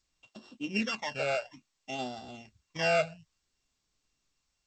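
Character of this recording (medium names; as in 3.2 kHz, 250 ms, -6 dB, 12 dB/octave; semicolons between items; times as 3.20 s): a buzz of ramps at a fixed pitch in blocks of 16 samples; phasing stages 12, 0.58 Hz, lowest notch 320–2200 Hz; G.722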